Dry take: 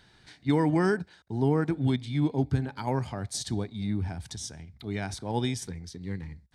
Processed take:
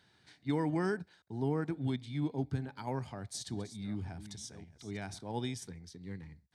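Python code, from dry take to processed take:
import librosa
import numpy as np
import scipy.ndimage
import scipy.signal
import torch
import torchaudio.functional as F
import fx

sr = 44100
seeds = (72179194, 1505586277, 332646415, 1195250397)

y = fx.reverse_delay(x, sr, ms=550, wet_db=-12.5, at=(2.99, 5.21))
y = scipy.signal.sosfilt(scipy.signal.butter(2, 86.0, 'highpass', fs=sr, output='sos'), y)
y = y * librosa.db_to_amplitude(-8.0)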